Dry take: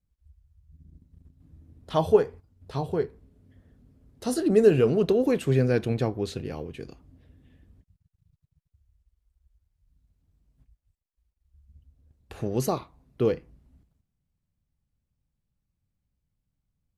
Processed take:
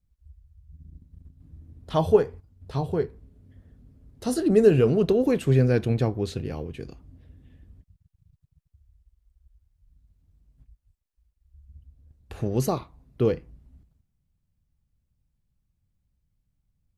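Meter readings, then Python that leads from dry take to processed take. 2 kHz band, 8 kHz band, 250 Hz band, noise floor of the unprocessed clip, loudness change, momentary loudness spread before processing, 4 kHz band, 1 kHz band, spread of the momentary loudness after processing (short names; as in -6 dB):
0.0 dB, 0.0 dB, +2.0 dB, -82 dBFS, +1.5 dB, 16 LU, 0.0 dB, 0.0 dB, 15 LU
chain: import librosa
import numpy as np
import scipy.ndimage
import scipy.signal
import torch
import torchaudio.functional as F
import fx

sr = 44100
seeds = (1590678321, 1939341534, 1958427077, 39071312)

y = fx.low_shelf(x, sr, hz=140.0, db=7.5)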